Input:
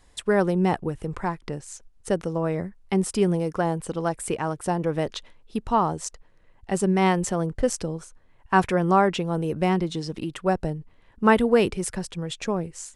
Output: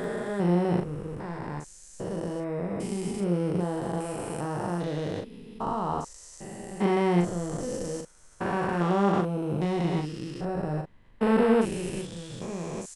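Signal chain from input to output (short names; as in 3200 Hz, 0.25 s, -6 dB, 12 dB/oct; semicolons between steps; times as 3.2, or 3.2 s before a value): stepped spectrum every 0.4 s; doubler 40 ms -5 dB; gain -1 dB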